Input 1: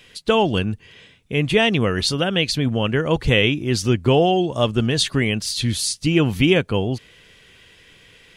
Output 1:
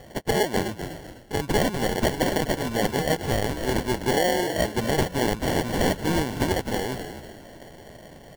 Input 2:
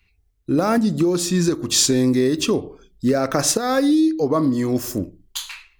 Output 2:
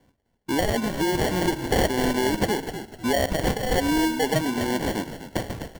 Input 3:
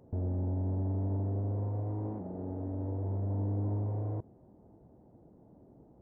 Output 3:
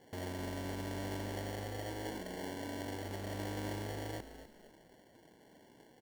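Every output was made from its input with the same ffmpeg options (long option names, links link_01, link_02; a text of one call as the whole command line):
ffmpeg -i in.wav -filter_complex "[0:a]highpass=frequency=860:poles=1,asplit=2[link_01][link_02];[link_02]acompressor=threshold=-30dB:ratio=6,volume=0dB[link_03];[link_01][link_03]amix=inputs=2:normalize=0,acrusher=samples=35:mix=1:aa=0.000001,asplit=4[link_04][link_05][link_06][link_07];[link_05]adelay=251,afreqshift=-48,volume=-11dB[link_08];[link_06]adelay=502,afreqshift=-96,volume=-20.9dB[link_09];[link_07]adelay=753,afreqshift=-144,volume=-30.8dB[link_10];[link_04][link_08][link_09][link_10]amix=inputs=4:normalize=0,alimiter=limit=-12.5dB:level=0:latency=1:release=220" out.wav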